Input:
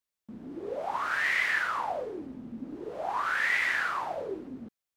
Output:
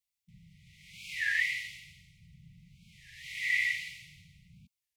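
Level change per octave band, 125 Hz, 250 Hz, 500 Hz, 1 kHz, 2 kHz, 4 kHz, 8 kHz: −2.0 dB, below −20 dB, below −40 dB, below −40 dB, −4.0 dB, −0.5 dB, 0.0 dB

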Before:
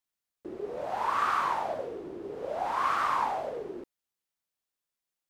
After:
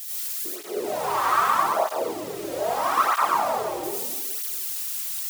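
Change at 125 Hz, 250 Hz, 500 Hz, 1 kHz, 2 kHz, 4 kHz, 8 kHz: +6.0, +7.0, +8.0, +6.5, +6.0, +11.0, +22.5 decibels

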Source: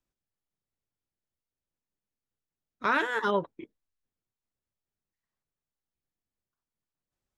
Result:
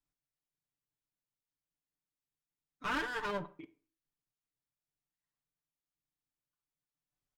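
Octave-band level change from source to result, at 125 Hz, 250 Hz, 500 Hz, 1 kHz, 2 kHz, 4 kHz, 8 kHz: −6.0 dB, −7.5 dB, −11.0 dB, −9.5 dB, −8.0 dB, −4.5 dB, can't be measured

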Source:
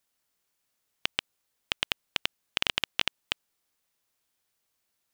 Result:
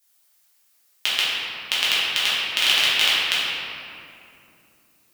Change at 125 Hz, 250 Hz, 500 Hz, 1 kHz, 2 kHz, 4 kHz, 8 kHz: can't be measured, +3.5 dB, +7.0 dB, +9.5 dB, +12.0 dB, +12.5 dB, +14.5 dB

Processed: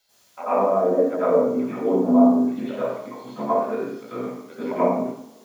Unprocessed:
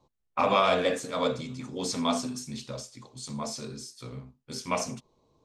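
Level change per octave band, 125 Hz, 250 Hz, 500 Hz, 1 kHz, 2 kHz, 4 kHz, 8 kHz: +2.0 dB, +13.5 dB, +10.0 dB, +4.5 dB, −5.0 dB, below −15 dB, below −15 dB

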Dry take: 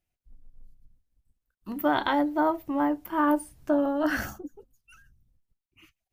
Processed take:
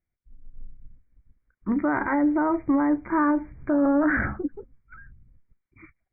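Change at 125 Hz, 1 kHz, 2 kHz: +8.5, −0.5, +4.0 decibels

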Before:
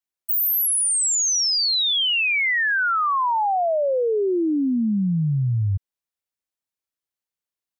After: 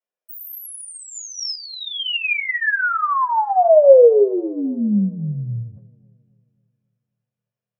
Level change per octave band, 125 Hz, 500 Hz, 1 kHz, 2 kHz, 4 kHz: −4.0, +10.5, +2.5, 0.0, −6.5 decibels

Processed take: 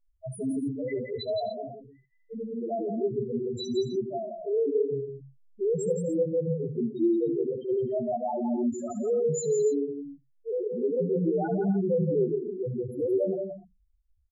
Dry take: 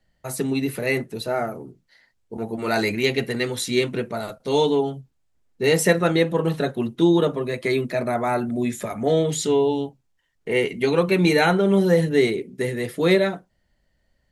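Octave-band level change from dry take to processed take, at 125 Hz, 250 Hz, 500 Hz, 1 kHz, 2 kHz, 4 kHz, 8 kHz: −8.5 dB, −6.5 dB, −5.5 dB, −10.5 dB, below −25 dB, −16.5 dB, −10.5 dB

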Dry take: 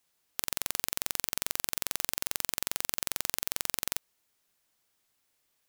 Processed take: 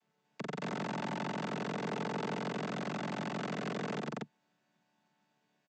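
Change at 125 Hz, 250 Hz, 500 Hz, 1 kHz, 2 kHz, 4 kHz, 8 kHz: +11.5, +13.5, +9.0, +5.0, −1.5, −10.5, −22.0 decibels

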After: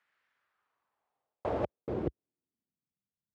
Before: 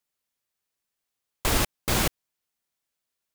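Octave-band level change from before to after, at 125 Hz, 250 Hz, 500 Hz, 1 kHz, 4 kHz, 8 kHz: −10.0 dB, −5.5 dB, −1.5 dB, −9.0 dB, −30.5 dB, below −40 dB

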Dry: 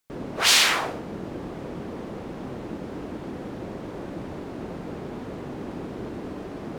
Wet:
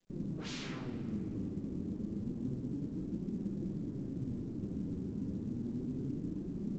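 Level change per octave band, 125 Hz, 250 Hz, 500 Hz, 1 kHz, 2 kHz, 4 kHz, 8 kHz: −1.0 dB, −2.5 dB, −13.5 dB, below −25 dB, below −25 dB, below −25 dB, below −25 dB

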